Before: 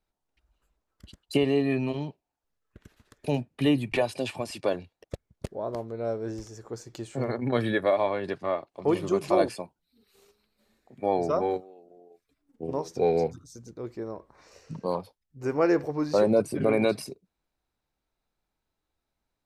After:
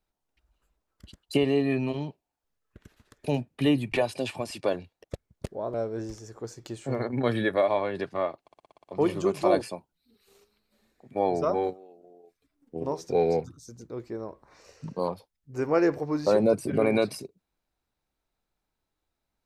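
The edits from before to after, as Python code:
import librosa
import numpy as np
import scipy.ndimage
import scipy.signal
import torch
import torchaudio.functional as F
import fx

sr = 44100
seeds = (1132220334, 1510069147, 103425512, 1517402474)

y = fx.edit(x, sr, fx.cut(start_s=5.74, length_s=0.29),
    fx.stutter(start_s=8.71, slice_s=0.06, count=8), tone=tone)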